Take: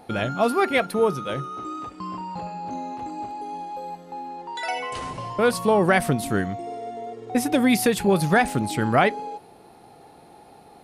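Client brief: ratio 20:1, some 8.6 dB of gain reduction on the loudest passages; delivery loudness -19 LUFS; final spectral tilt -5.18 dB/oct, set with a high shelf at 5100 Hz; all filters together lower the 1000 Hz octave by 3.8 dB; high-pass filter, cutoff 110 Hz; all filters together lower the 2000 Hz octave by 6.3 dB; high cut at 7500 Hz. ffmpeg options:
-af "highpass=110,lowpass=7.5k,equalizer=f=1k:t=o:g=-4,equalizer=f=2k:t=o:g=-7.5,highshelf=f=5.1k:g=5.5,acompressor=threshold=-24dB:ratio=20,volume=13dB"

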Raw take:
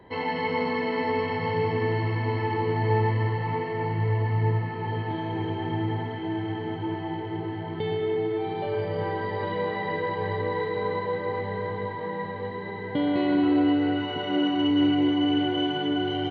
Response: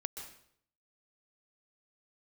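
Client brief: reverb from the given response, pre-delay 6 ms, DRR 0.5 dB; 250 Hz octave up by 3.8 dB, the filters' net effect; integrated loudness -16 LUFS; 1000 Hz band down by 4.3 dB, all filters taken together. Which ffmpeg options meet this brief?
-filter_complex "[0:a]equalizer=f=250:t=o:g=5,equalizer=f=1k:t=o:g=-5.5,asplit=2[a][b];[1:a]atrim=start_sample=2205,adelay=6[c];[b][c]afir=irnorm=-1:irlink=0,volume=0dB[d];[a][d]amix=inputs=2:normalize=0,volume=7dB"

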